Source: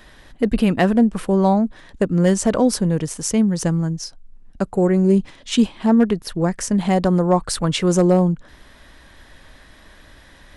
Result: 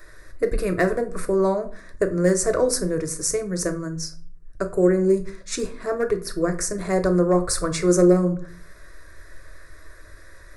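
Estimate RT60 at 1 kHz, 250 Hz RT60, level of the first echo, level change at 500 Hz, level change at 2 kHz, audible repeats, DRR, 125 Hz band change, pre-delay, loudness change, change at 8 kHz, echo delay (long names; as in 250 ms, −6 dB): 0.45 s, 0.60 s, no echo audible, 0.0 dB, −0.5 dB, no echo audible, 6.5 dB, −6.5 dB, 3 ms, −3.5 dB, +1.0 dB, no echo audible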